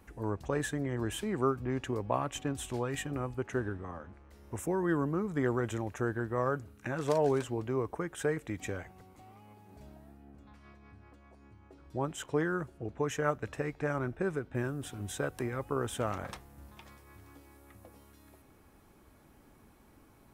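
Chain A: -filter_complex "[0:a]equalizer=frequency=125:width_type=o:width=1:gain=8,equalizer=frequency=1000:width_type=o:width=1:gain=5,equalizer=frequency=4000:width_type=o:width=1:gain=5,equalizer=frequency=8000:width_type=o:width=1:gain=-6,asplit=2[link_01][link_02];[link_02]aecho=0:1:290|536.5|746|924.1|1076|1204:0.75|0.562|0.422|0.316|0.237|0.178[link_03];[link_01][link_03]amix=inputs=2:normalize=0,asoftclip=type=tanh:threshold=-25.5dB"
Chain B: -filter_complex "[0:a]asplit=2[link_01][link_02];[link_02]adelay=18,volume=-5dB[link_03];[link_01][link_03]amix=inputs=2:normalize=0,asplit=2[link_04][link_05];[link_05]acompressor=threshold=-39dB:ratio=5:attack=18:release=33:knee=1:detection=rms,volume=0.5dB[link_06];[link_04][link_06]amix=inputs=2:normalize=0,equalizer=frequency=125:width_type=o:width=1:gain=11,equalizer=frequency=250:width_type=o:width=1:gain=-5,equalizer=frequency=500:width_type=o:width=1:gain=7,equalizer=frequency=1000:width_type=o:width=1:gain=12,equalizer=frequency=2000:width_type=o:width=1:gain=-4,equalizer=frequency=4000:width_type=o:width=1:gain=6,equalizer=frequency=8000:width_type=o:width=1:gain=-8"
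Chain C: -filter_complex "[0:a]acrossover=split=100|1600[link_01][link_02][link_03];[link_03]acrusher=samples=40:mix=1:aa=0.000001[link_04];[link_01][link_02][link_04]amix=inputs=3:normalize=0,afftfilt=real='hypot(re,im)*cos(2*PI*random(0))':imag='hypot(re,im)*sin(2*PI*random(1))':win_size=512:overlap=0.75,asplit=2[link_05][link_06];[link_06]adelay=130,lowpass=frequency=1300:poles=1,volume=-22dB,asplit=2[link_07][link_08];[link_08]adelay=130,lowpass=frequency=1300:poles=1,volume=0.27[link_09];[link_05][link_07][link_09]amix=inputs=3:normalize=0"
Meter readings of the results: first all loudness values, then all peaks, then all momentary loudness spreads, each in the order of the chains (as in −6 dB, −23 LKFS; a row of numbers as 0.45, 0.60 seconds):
−32.0, −23.0, −41.0 LKFS; −25.5, −4.5, −22.5 dBFS; 19, 21, 12 LU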